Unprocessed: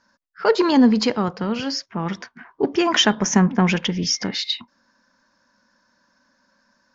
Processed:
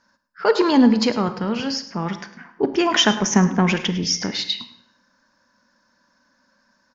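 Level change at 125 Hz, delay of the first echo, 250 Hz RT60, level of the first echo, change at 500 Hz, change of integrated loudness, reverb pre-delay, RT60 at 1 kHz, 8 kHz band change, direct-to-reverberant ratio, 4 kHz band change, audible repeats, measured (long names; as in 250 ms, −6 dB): 0.0 dB, 104 ms, 1.0 s, −16.0 dB, +0.5 dB, +0.5 dB, 30 ms, 0.70 s, can't be measured, 10.5 dB, +0.5 dB, 1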